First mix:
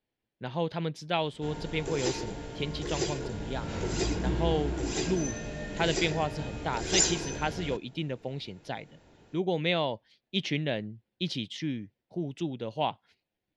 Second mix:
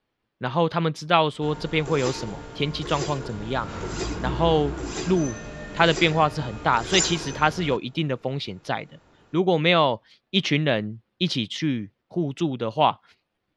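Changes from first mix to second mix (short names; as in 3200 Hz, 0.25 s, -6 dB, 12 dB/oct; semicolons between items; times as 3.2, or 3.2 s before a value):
speech +8.0 dB; master: add bell 1200 Hz +11 dB 0.51 oct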